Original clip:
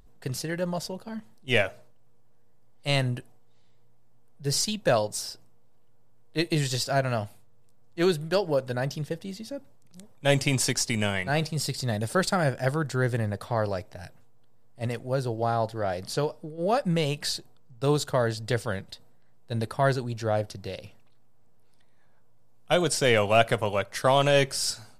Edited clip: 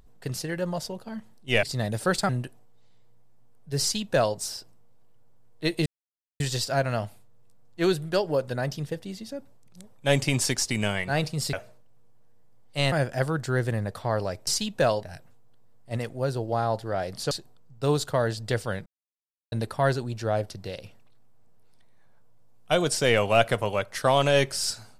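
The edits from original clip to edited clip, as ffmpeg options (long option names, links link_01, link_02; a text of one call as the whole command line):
ffmpeg -i in.wav -filter_complex "[0:a]asplit=11[link_01][link_02][link_03][link_04][link_05][link_06][link_07][link_08][link_09][link_10][link_11];[link_01]atrim=end=1.632[link_12];[link_02]atrim=start=11.718:end=12.382[link_13];[link_03]atrim=start=3.018:end=6.59,asetpts=PTS-STARTPTS,afade=type=out:start_time=3.568:duration=0.004:curve=hsin,apad=pad_dur=0.54[link_14];[link_04]atrim=start=6.59:end=11.722,asetpts=PTS-STARTPTS,afade=type=in:duration=0.004:curve=hsin[link_15];[link_05]atrim=start=1.628:end=3.022[link_16];[link_06]atrim=start=12.378:end=13.932[link_17];[link_07]atrim=start=4.538:end=5.102[link_18];[link_08]atrim=start=13.928:end=16.212[link_19];[link_09]atrim=start=17.308:end=18.86,asetpts=PTS-STARTPTS,afade=type=out:start_time=1.548:duration=0.004:curve=hsin[link_20];[link_10]atrim=start=18.86:end=19.52,asetpts=PTS-STARTPTS,volume=0[link_21];[link_11]atrim=start=19.52,asetpts=PTS-STARTPTS,afade=type=in:duration=0.004:curve=hsin[link_22];[link_12][link_13]acrossfade=duration=0.004:curve1=hsin:curve2=hsin[link_23];[link_14][link_15]concat=n=2:v=0:a=1[link_24];[link_23][link_24]acrossfade=duration=0.004:curve1=hsin:curve2=hsin[link_25];[link_25][link_16]acrossfade=duration=0.004:curve1=hsin:curve2=hsin[link_26];[link_26][link_17]acrossfade=duration=0.004:curve1=hsin:curve2=hsin[link_27];[link_27][link_18]acrossfade=duration=0.004:curve1=hsin:curve2=hsin[link_28];[link_28][link_19]acrossfade=duration=0.004:curve1=hsin:curve2=hsin[link_29];[link_20][link_21][link_22]concat=n=3:v=0:a=1[link_30];[link_29][link_30]acrossfade=duration=0.004:curve1=hsin:curve2=hsin" out.wav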